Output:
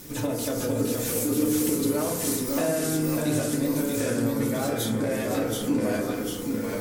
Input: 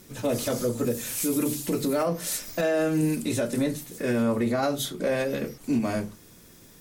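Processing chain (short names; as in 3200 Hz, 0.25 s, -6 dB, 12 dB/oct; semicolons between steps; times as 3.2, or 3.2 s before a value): high shelf 8800 Hz +6 dB; compressor 6:1, threshold -34 dBFS, peak gain reduction 12.5 dB; echoes that change speed 0.444 s, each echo -1 st, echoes 3; FDN reverb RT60 1.3 s, low-frequency decay 1×, high-frequency decay 0.25×, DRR 1.5 dB; gain +5 dB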